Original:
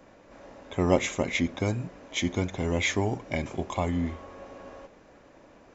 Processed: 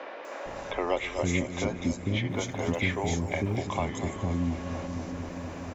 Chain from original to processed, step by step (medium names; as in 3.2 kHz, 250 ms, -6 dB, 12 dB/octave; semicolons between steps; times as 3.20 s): three bands offset in time mids, highs, lows 250/450 ms, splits 370/3800 Hz; 2.29–3.56 s: crackle 340 per s -51 dBFS; on a send: filtered feedback delay 241 ms, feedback 70%, low-pass 3.2 kHz, level -12 dB; on the sum: three bands compressed up and down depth 70%